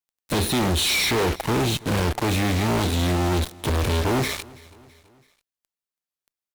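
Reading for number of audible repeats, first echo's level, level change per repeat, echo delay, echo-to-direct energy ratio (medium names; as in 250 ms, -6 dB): 3, -23.0 dB, -6.0 dB, 330 ms, -22.0 dB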